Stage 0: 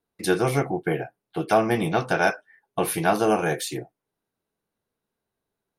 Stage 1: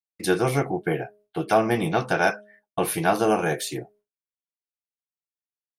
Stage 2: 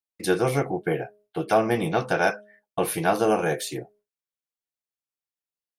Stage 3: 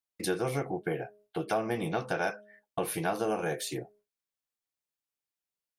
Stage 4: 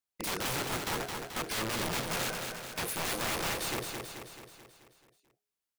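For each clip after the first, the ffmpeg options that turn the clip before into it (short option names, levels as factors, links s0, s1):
-af "bandreject=f=207.8:t=h:w=4,bandreject=f=415.6:t=h:w=4,bandreject=f=623.4:t=h:w=4,agate=range=0.0224:threshold=0.00282:ratio=3:detection=peak"
-af "equalizer=f=510:w=4.5:g=4.5,volume=0.841"
-af "acompressor=threshold=0.02:ratio=2"
-filter_complex "[0:a]aeval=exprs='(mod(28.2*val(0)+1,2)-1)/28.2':c=same,asplit=2[s0][s1];[s1]aecho=0:1:217|434|651|868|1085|1302|1519:0.562|0.315|0.176|0.0988|0.0553|0.031|0.0173[s2];[s0][s2]amix=inputs=2:normalize=0"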